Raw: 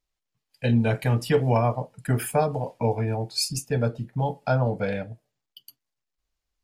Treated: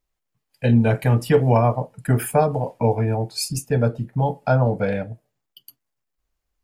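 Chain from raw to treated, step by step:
parametric band 4,400 Hz −6.5 dB 1.9 octaves
level +5 dB

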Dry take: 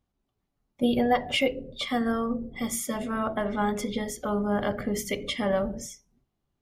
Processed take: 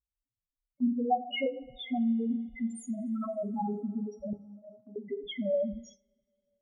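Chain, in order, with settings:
spectral peaks only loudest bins 2
0:04.33–0:04.96: tuned comb filter 90 Hz, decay 1.2 s, harmonics odd, mix 90%
coupled-rooms reverb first 0.43 s, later 3.3 s, from −21 dB, DRR 12.5 dB
noise gate −53 dBFS, range −11 dB

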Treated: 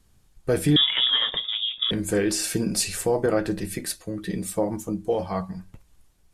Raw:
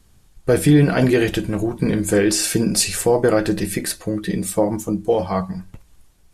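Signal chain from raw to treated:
0:00.76–0:01.91: voice inversion scrambler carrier 3,600 Hz
0:03.26–0:04.19: multiband upward and downward expander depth 40%
level −6.5 dB

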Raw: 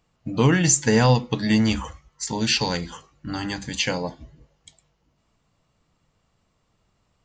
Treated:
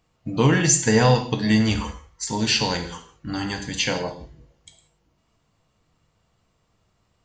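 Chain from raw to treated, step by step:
reverb whose tail is shaped and stops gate 210 ms falling, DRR 5 dB

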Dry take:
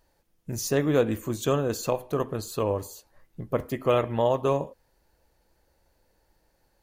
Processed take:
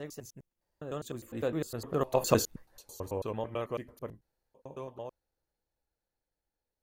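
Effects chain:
slices reordered back to front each 106 ms, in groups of 8
source passing by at 0:02.37, 14 m/s, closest 2.9 metres
level +3.5 dB

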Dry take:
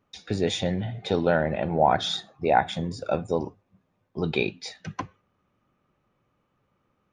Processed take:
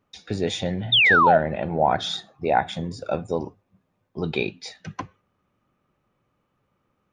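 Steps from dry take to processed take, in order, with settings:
sound drawn into the spectrogram fall, 0:00.92–0:01.38, 590–3,800 Hz −16 dBFS

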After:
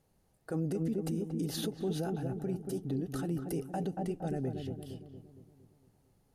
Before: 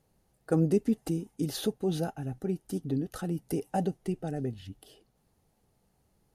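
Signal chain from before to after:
on a send: feedback echo with a low-pass in the loop 231 ms, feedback 55%, low-pass 880 Hz, level −5.5 dB
on the sum: brickwall limiter −24.5 dBFS, peak gain reduction 11 dB
level −1.5 dB

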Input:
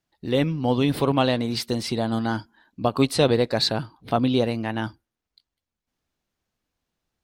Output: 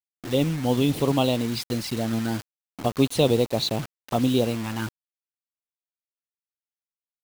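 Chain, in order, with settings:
flanger swept by the level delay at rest 5.4 ms, full sweep at −19 dBFS
bit reduction 6 bits

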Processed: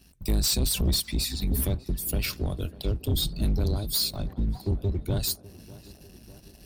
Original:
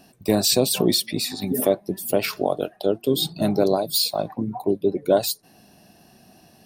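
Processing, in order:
sub-octave generator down 2 octaves, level +2 dB
guitar amp tone stack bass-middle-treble 6-0-2
in parallel at −2 dB: downward compressor, threshold −47 dBFS, peak gain reduction 16.5 dB
on the sum: leveller curve on the samples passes 2
reversed playback
upward compression, threshold −47 dBFS
reversed playback
tape delay 598 ms, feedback 76%, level −16 dB, low-pass 1,700 Hz
level +3.5 dB

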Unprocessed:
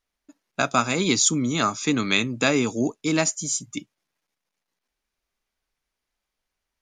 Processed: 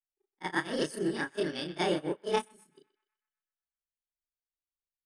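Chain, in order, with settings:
every overlapping window played backwards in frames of 106 ms
low-shelf EQ 61 Hz +8.5 dB
notch filter 5,400 Hz, Q 5.3
on a send: feedback echo with a band-pass in the loop 169 ms, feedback 67%, band-pass 1,200 Hz, level −10 dB
on the sum: harmonic and percussive parts rebalanced percussive −5 dB
mains-hum notches 50/100/150 Hz
wrong playback speed 33 rpm record played at 45 rpm
high-shelf EQ 4,400 Hz −8.5 dB
expander for the loud parts 2.5 to 1, over −40 dBFS

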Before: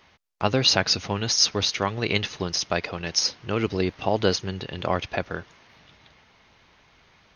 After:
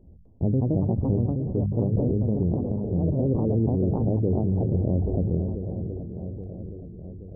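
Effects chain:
spectral tilt −2 dB per octave
feedback echo with a long and a short gap by turns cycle 824 ms, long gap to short 1.5 to 1, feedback 55%, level −15 dB
0:00.59–0:02.87: gate pattern "x.xxx.xx.x" 138 BPM −60 dB
Gaussian smoothing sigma 21 samples
delay with pitch and tempo change per echo 254 ms, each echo +3 semitones, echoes 2, each echo −6 dB
parametric band 62 Hz +7.5 dB 0.27 octaves
downward compressor 2 to 1, threshold −28 dBFS, peak gain reduction 6.5 dB
mains-hum notches 50/100/150/200 Hz
brickwall limiter −24 dBFS, peak gain reduction 6.5 dB
level that may fall only so fast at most 32 dB per second
level +8.5 dB

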